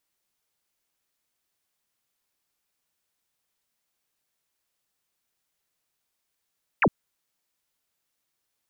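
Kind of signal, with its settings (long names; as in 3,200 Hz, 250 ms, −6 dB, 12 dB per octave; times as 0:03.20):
single falling chirp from 2,900 Hz, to 130 Hz, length 0.06 s sine, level −16 dB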